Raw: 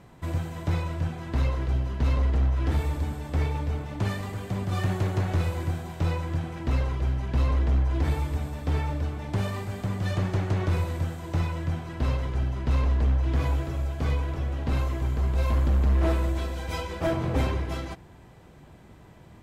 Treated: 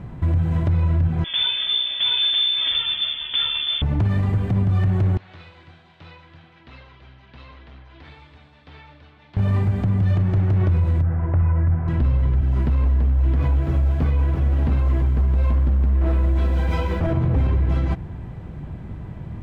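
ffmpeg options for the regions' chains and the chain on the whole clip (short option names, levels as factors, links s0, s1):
-filter_complex "[0:a]asettb=1/sr,asplit=3[s0][s1][s2];[s0]atrim=end=1.244[s3];[s1]atrim=start=1.24:end=3.82,asetpts=PTS-STARTPTS,afade=t=in:d=0.004:c=qsin,afade=t=out:st=2.576:d=0.004:c=qsin,highpass=f=150:p=1,lowshelf=f=290:g=8.5,lowpass=f=3100:t=q:w=0.5098,lowpass=f=3100:t=q:w=0.6013,lowpass=f=3100:t=q:w=0.9,lowpass=f=3100:t=q:w=2.563,afreqshift=-3600[s4];[s2]atrim=start=3.816[s5];[s3][s4]acrossfade=d=0.004:c1=hsin:c2=qsin[s6];[s6][s5]acrossfade=d=0.004:c1=qsin:c2=hsin,asettb=1/sr,asplit=3[s7][s8][s9];[s7]atrim=end=5.174[s10];[s8]atrim=start=5.17:end=9.37,asetpts=PTS-STARTPTS,afade=t=in:d=0.004:c=qsin,afade=t=out:st=4.196:d=0.004:c=qsin,bandpass=f=4000:t=q:w=2.1,aemphasis=mode=reproduction:type=75kf[s11];[s9]atrim=start=9.366[s12];[s10][s11]acrossfade=d=0.004:c1=hsin:c2=qsin[s13];[s13][s12]acrossfade=d=0.004:c1=qsin:c2=hsin,asettb=1/sr,asplit=3[s14][s15][s16];[s14]atrim=end=11.024[s17];[s15]atrim=start=11.02:end=11.88,asetpts=PTS-STARTPTS,afade=t=in:d=0.004:c=qsin,afade=t=out:st=0.856:d=0.004:c=qsin,lowpass=f=1900:w=0.5412,lowpass=f=1900:w=1.3066,equalizer=f=220:w=0.73:g=-6.5,asoftclip=type=hard:threshold=0.0668[s18];[s16]atrim=start=11.876[s19];[s17][s18]acrossfade=d=0.004:c1=hsin:c2=qsin[s20];[s20][s19]acrossfade=d=0.004:c1=qsin:c2=hsin,asettb=1/sr,asplit=3[s21][s22][s23];[s21]atrim=end=12.414[s24];[s22]atrim=start=12.41:end=17,asetpts=PTS-STARTPTS,afade=t=in:d=0.004:c=qsin,afade=t=out:st=4.586:d=0.004:c=qsin,highpass=f=50:w=0.5412,highpass=f=50:w=1.3066,acrusher=bits=7:mix=0:aa=0.5,equalizer=f=100:t=o:w=0.93:g=-9.5[s25];[s23]atrim=start=16.996[s26];[s24][s25]acrossfade=d=0.004:c1=hsin:c2=qsin[s27];[s27][s26]acrossfade=d=0.004:c1=qsin:c2=hsin,bass=f=250:g=12,treble=f=4000:g=-14,alimiter=limit=0.1:level=0:latency=1:release=152,volume=2.37"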